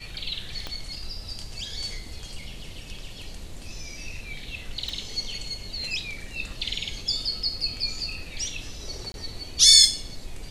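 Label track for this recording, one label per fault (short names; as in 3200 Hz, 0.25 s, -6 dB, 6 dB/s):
0.670000	0.670000	pop -18 dBFS
4.890000	4.890000	pop
9.120000	9.140000	gap 21 ms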